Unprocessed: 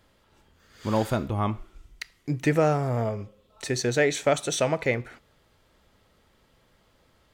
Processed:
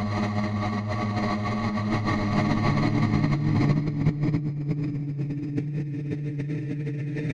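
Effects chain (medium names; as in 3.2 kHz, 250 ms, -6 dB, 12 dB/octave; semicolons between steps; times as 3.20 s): coarse spectral quantiser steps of 15 dB; low-pass 7.6 kHz 12 dB/octave; treble shelf 5.8 kHz -11 dB; multi-tap echo 49/55/552 ms -7/-12/-5 dB; Paulstretch 20×, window 0.50 s, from 2.01 s; tape echo 501 ms, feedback 73%, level -5.5 dB, low-pass 1.5 kHz; peak limiter -25.5 dBFS, peak gain reduction 11 dB; compressor with a negative ratio -38 dBFS, ratio -0.5; peaking EQ 160 Hz +7 dB 1.9 oct; trim +9 dB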